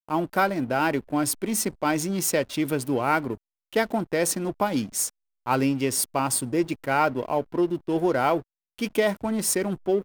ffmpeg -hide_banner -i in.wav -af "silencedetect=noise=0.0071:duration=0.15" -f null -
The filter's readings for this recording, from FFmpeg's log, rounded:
silence_start: 3.35
silence_end: 3.73 | silence_duration: 0.37
silence_start: 5.09
silence_end: 5.46 | silence_duration: 0.37
silence_start: 8.42
silence_end: 8.78 | silence_duration: 0.37